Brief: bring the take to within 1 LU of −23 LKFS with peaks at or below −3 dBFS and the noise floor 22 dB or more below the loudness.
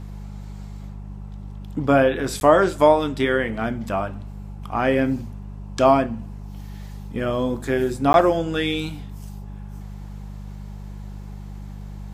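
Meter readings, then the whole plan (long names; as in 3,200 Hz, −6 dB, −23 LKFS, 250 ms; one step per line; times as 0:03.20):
number of dropouts 2; longest dropout 11 ms; mains hum 50 Hz; hum harmonics up to 200 Hz; level of the hum −32 dBFS; integrated loudness −20.5 LKFS; sample peak −2.0 dBFS; target loudness −23.0 LKFS
→ repair the gap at 0:02.40/0:08.13, 11 ms
hum removal 50 Hz, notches 4
level −2.5 dB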